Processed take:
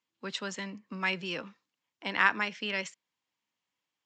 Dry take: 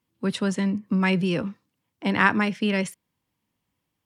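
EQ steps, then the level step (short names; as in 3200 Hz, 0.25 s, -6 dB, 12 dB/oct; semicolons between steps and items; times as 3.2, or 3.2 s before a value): HPF 1100 Hz 6 dB/oct; elliptic low-pass 7300 Hz, stop band 40 dB; -2.0 dB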